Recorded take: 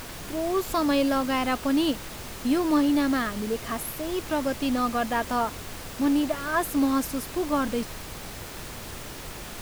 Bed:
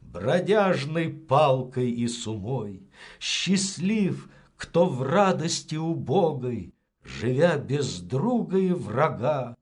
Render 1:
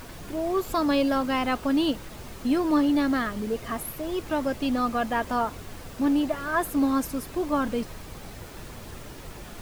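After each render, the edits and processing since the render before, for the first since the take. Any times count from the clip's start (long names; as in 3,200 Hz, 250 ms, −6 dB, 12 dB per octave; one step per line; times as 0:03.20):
broadband denoise 7 dB, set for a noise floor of −39 dBFS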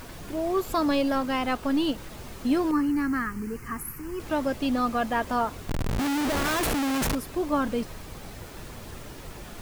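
0:00.89–0:01.98: gain on one half-wave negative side −3 dB
0:02.71–0:04.20: phaser with its sweep stopped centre 1,500 Hz, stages 4
0:05.69–0:07.15: comparator with hysteresis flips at −36.5 dBFS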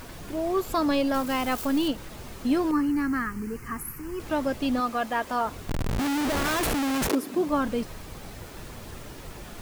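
0:01.14–0:01.88: spike at every zero crossing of −28 dBFS
0:04.80–0:05.45: low-shelf EQ 200 Hz −11.5 dB
0:07.07–0:07.47: high-pass with resonance 410 Hz → 170 Hz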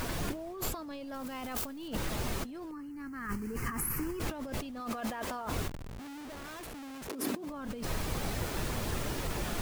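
brickwall limiter −22 dBFS, peak gain reduction 9 dB
compressor whose output falls as the input rises −38 dBFS, ratio −1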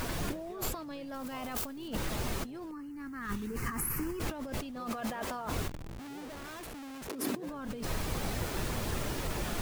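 mix in bed −30.5 dB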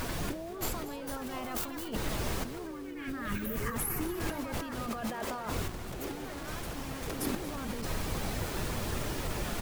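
delay with pitch and tempo change per echo 609 ms, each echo +5 semitones, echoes 2, each echo −6 dB
repeating echo 235 ms, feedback 55%, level −16 dB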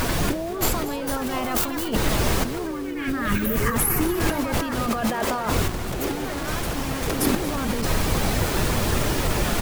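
level +12 dB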